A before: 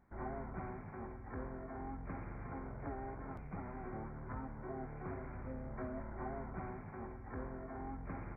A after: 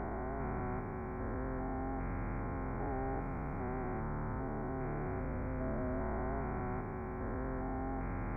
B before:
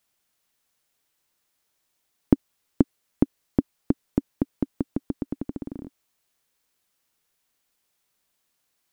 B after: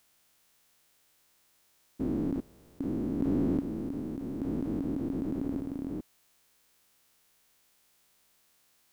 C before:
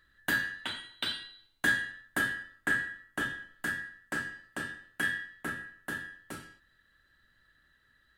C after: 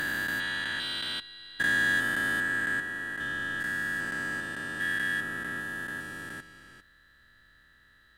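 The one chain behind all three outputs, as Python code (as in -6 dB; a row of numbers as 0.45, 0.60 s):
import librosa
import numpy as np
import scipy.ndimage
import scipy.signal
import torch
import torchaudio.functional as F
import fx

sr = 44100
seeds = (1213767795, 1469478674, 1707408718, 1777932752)

y = fx.spec_steps(x, sr, hold_ms=400)
y = y * librosa.db_to_amplitude(8.5)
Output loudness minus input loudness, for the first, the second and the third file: +6.5, -4.5, +4.0 LU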